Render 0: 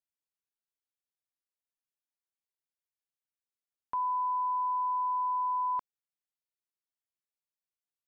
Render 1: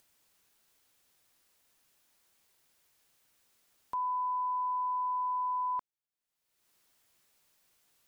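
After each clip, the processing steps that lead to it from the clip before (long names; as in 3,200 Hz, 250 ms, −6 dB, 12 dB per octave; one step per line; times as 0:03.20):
upward compression, threshold −48 dBFS
level −2 dB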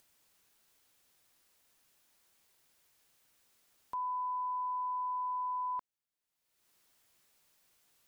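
brickwall limiter −32.5 dBFS, peak gain reduction 3.5 dB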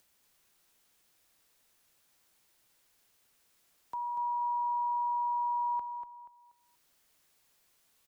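repeating echo 240 ms, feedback 31%, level −7 dB
frequency shifter −39 Hz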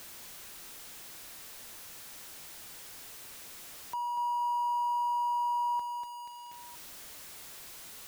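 converter with a step at zero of −42 dBFS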